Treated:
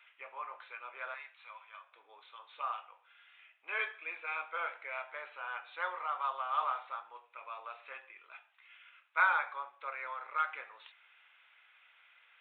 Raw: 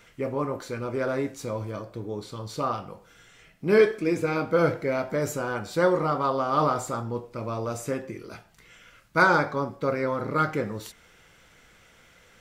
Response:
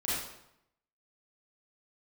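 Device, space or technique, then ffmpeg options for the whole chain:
musical greeting card: -filter_complex "[0:a]asettb=1/sr,asplit=3[link_01][link_02][link_03];[link_01]atrim=end=1.144[link_04];[link_02]atrim=start=1.14:end=1.93,asetpts=PTS-STARTPTS,afade=type=in:duration=0.004:curve=qsin,afade=type=out:start_time=0.786:duration=0.004:curve=qsin,highpass=1000[link_05];[link_03]atrim=start=1.926[link_06];[link_04][link_05]acrossfade=duration=0.004:curve1=hsin:curve2=qsin[link_07];[link_07][link_06]acrossfade=duration=0.004:curve1=qsin:curve2=hsin,aresample=8000,aresample=44100,highpass=frequency=880:width=0.5412,highpass=frequency=880:width=1.3066,equalizer=frequency=2500:width_type=o:width=0.22:gain=8,volume=-7dB"

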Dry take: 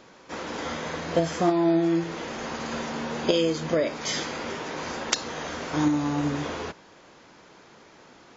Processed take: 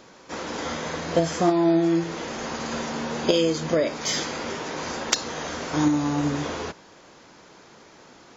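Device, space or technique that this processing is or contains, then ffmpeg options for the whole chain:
exciter from parts: -filter_complex "[0:a]asplit=2[link_01][link_02];[link_02]highpass=3800,asoftclip=type=tanh:threshold=-25.5dB,volume=-5dB[link_03];[link_01][link_03]amix=inputs=2:normalize=0,volume=2dB"

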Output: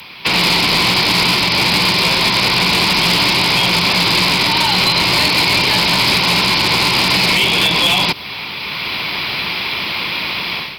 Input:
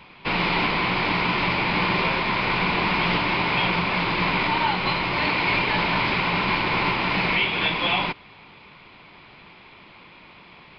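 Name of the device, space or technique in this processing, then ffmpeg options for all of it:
FM broadcast chain: -filter_complex "[0:a]highpass=48,dynaudnorm=framelen=330:gausssize=3:maxgain=15dB,acrossover=split=170|1000|4200[link_01][link_02][link_03][link_04];[link_01]acompressor=threshold=-27dB:ratio=4[link_05];[link_02]acompressor=threshold=-23dB:ratio=4[link_06];[link_03]acompressor=threshold=-29dB:ratio=4[link_07];[link_04]acompressor=threshold=-31dB:ratio=4[link_08];[link_05][link_06][link_07][link_08]amix=inputs=4:normalize=0,aemphasis=mode=production:type=75fm,alimiter=limit=-14dB:level=0:latency=1:release=129,asoftclip=type=hard:threshold=-17.5dB,lowpass=frequency=15000:width=0.5412,lowpass=frequency=15000:width=1.3066,aemphasis=mode=production:type=75fm,volume=7.5dB"

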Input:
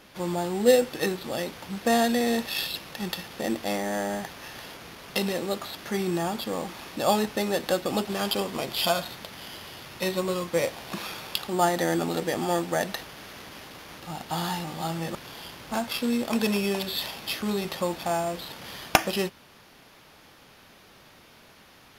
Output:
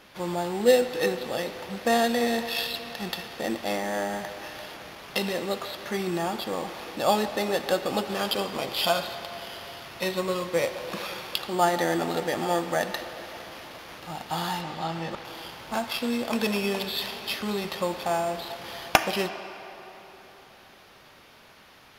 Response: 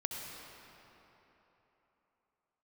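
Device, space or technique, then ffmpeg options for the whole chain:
filtered reverb send: -filter_complex "[0:a]asettb=1/sr,asplit=3[link_01][link_02][link_03];[link_01]atrim=end=14.614[link_04];[link_02]atrim=start=14.61:end=15.25,asetpts=PTS-STARTPTS,afade=type=in:duration=0.004:curve=qsin,afade=type=out:start_time=0.636:duration=0.004:curve=qsin,acrossover=split=6000[link_05][link_06];[link_06]acompressor=threshold=-59dB:ratio=4:attack=1:release=60[link_07];[link_05][link_07]amix=inputs=2:normalize=0[link_08];[link_03]atrim=start=15.246[link_09];[link_04][link_08]acrossfade=duration=0.004:curve1=hsin:curve2=qsin[link_10];[link_10][link_09]acrossfade=duration=0.004:curve1=qsin:curve2=hsin,asplit=2[link_11][link_12];[link_12]highpass=350,lowpass=5700[link_13];[1:a]atrim=start_sample=2205[link_14];[link_13][link_14]afir=irnorm=-1:irlink=0,volume=-6dB[link_15];[link_11][link_15]amix=inputs=2:normalize=0,volume=-2dB"

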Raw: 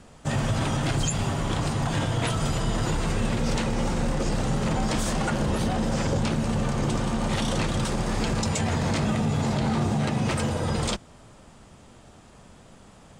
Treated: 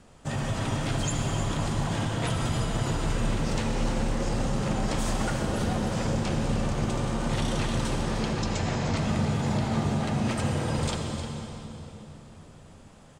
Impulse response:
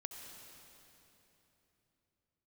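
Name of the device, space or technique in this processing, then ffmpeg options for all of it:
cave: -filter_complex "[0:a]asettb=1/sr,asplit=3[link_01][link_02][link_03];[link_01]atrim=end=8.034[link_04];[link_02]atrim=start=8.03:end=8.97,asetpts=PTS-STARTPTS,afade=type=in:duration=0.004:curve=qsin,afade=type=out:start_time=0.936:duration=0.004:curve=qsin,lowpass=frequency=6700:width=0.5412,lowpass=frequency=6700:width=1.3066[link_05];[link_03]atrim=start=8.966[link_06];[link_04][link_05]acrossfade=duration=0.004:curve1=hsin:curve2=qsin[link_07];[link_07][link_06]acrossfade=duration=0.004:curve1=qsin:curve2=hsin,aecho=1:1:305:0.266[link_08];[1:a]atrim=start_sample=2205[link_09];[link_08][link_09]afir=irnorm=-1:irlink=0"

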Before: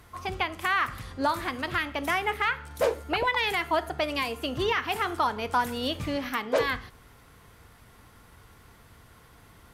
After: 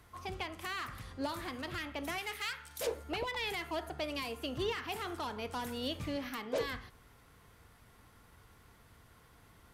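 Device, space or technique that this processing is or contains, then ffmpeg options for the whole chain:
one-band saturation: -filter_complex "[0:a]acrossover=split=590|2700[link_01][link_02][link_03];[link_02]asoftclip=type=tanh:threshold=-34dB[link_04];[link_01][link_04][link_03]amix=inputs=3:normalize=0,asettb=1/sr,asplit=3[link_05][link_06][link_07];[link_05]atrim=end=2.184[link_08];[link_06]atrim=start=2.18:end=2.87,asetpts=PTS-STARTPTS,afade=type=in:duration=0.004:curve=qsin,afade=type=out:start_time=0.686:duration=0.004:curve=qsin,tiltshelf=frequency=1500:gain=-8[link_09];[link_07]atrim=start=2.866[link_10];[link_08][link_09]acrossfade=duration=0.004:curve1=hsin:curve2=qsin[link_11];[link_11][link_10]acrossfade=duration=0.004:curve1=qsin:curve2=hsin,volume=-7dB"

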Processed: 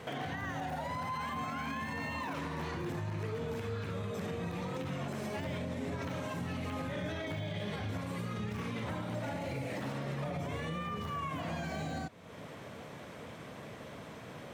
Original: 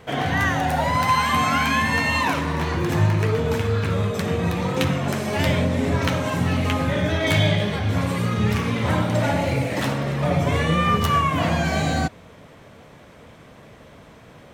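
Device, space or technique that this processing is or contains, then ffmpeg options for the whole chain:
podcast mastering chain: -af "highpass=97,deesser=0.85,acompressor=threshold=-39dB:ratio=2.5,alimiter=level_in=5dB:limit=-24dB:level=0:latency=1:release=39,volume=-5dB" -ar 44100 -c:a libmp3lame -b:a 128k

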